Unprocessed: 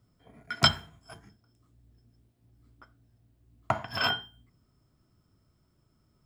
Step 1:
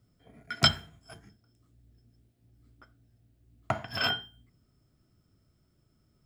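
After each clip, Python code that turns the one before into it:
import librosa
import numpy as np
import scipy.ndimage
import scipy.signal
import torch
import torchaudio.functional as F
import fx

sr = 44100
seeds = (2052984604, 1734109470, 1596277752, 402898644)

y = fx.peak_eq(x, sr, hz=1000.0, db=-7.0, octaves=0.56)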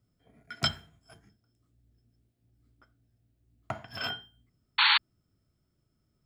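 y = fx.spec_paint(x, sr, seeds[0], shape='noise', start_s=4.78, length_s=0.2, low_hz=820.0, high_hz=4500.0, level_db=-16.0)
y = F.gain(torch.from_numpy(y), -6.0).numpy()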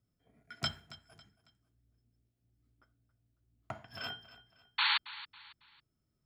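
y = fx.echo_feedback(x, sr, ms=275, feedback_pct=36, wet_db=-17.0)
y = F.gain(torch.from_numpy(y), -7.0).numpy()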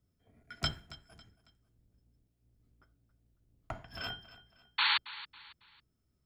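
y = fx.octave_divider(x, sr, octaves=1, level_db=1.0)
y = F.gain(torch.from_numpy(y), 1.0).numpy()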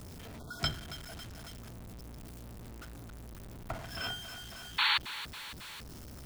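y = x + 0.5 * 10.0 ** (-41.0 / 20.0) * np.sign(x)
y = fx.spec_erase(y, sr, start_s=0.39, length_s=0.21, low_hz=1500.0, high_hz=3200.0)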